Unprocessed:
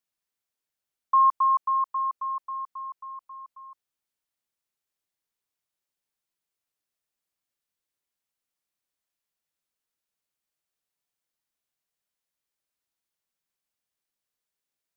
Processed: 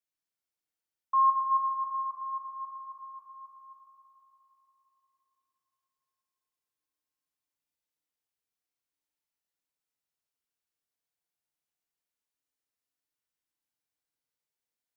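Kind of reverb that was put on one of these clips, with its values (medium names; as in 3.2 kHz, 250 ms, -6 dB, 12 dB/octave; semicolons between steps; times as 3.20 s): FDN reverb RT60 3.9 s, high-frequency decay 0.8×, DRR -1 dB; trim -8 dB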